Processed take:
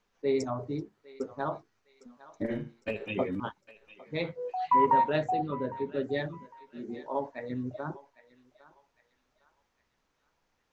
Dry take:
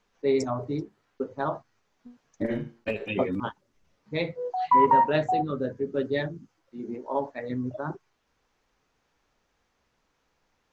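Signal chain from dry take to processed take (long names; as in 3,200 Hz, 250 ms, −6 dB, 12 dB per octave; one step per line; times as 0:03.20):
0:05.30–0:06.07: high-shelf EQ 6,100 Hz −9 dB
feedback echo with a high-pass in the loop 806 ms, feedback 44%, high-pass 1,100 Hz, level −15 dB
level −4 dB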